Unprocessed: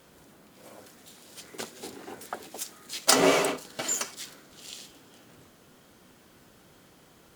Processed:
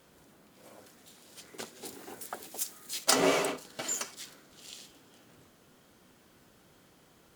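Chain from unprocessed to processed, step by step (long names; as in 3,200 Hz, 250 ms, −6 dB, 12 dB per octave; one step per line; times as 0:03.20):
0:01.85–0:03.04: high-shelf EQ 6,800 Hz +10.5 dB
level −4.5 dB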